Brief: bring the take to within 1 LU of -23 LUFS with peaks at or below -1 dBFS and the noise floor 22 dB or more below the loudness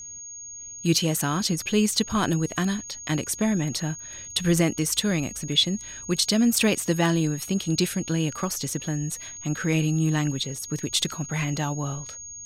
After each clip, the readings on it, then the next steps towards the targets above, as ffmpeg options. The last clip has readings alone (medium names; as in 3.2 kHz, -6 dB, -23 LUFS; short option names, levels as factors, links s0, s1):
steady tone 6.6 kHz; tone level -37 dBFS; loudness -25.0 LUFS; peak level -8.5 dBFS; loudness target -23.0 LUFS
-> -af "bandreject=f=6600:w=30"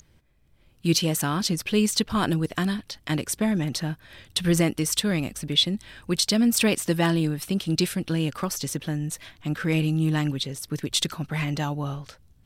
steady tone not found; loudness -25.0 LUFS; peak level -9.0 dBFS; loudness target -23.0 LUFS
-> -af "volume=1.26"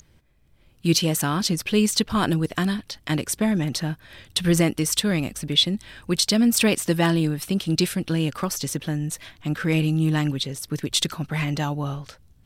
loudness -23.0 LUFS; peak level -7.0 dBFS; noise floor -57 dBFS